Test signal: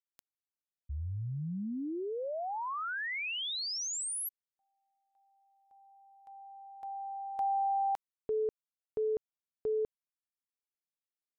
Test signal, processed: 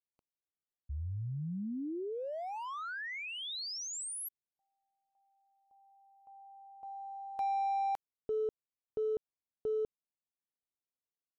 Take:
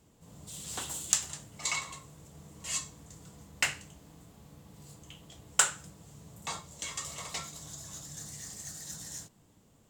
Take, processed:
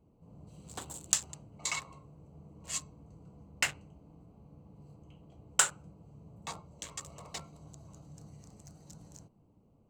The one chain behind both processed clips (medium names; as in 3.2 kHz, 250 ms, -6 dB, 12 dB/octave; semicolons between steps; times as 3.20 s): local Wiener filter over 25 samples; trim -1 dB